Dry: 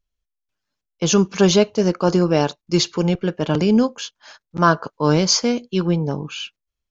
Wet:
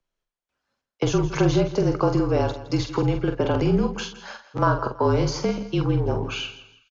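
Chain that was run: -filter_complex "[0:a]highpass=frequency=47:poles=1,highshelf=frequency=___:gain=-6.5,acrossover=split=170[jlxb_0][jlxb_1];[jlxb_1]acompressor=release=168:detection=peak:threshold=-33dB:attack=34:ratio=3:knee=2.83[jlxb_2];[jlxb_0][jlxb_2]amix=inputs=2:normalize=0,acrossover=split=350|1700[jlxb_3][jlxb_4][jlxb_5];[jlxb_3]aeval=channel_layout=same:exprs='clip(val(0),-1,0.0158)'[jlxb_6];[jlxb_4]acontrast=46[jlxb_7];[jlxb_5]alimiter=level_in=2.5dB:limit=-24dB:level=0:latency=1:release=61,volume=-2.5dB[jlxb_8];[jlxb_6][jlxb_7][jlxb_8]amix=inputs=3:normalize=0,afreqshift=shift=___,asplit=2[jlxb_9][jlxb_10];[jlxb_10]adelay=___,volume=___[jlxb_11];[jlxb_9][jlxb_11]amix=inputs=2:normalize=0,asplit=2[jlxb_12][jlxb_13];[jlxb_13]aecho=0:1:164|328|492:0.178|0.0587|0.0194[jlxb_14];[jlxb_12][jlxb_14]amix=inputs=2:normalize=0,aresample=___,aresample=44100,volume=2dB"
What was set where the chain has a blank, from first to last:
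5600, -37, 46, -7dB, 22050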